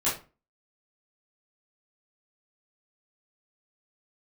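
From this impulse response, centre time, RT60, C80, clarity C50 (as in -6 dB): 32 ms, 0.35 s, 13.5 dB, 7.0 dB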